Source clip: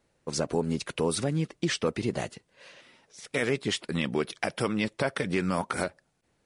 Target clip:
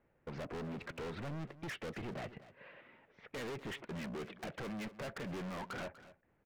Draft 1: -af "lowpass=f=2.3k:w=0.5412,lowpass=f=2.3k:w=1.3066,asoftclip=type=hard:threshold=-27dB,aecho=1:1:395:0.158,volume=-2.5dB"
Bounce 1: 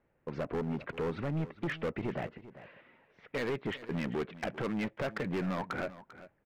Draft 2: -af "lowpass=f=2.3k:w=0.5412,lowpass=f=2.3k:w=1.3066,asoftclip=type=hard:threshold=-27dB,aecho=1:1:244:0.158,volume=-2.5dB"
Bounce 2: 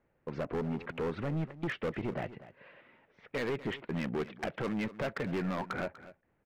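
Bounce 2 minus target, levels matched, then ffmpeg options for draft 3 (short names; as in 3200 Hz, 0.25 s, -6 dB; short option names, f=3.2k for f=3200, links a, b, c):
hard clip: distortion -5 dB
-af "lowpass=f=2.3k:w=0.5412,lowpass=f=2.3k:w=1.3066,asoftclip=type=hard:threshold=-38dB,aecho=1:1:244:0.158,volume=-2.5dB"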